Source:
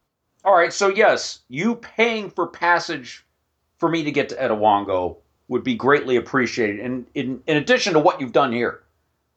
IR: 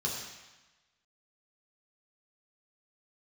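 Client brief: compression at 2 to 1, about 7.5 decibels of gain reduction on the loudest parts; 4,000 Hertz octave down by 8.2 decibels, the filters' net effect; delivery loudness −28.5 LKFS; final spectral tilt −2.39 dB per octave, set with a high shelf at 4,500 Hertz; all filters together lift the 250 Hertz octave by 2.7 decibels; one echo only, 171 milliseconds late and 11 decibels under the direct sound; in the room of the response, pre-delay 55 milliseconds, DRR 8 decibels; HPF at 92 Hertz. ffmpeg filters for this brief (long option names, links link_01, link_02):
-filter_complex "[0:a]highpass=92,equalizer=frequency=250:width_type=o:gain=3.5,equalizer=frequency=4000:width_type=o:gain=-8,highshelf=frequency=4500:gain=-5.5,acompressor=threshold=-24dB:ratio=2,aecho=1:1:171:0.282,asplit=2[link_01][link_02];[1:a]atrim=start_sample=2205,adelay=55[link_03];[link_02][link_03]afir=irnorm=-1:irlink=0,volume=-13dB[link_04];[link_01][link_04]amix=inputs=2:normalize=0,volume=-3.5dB"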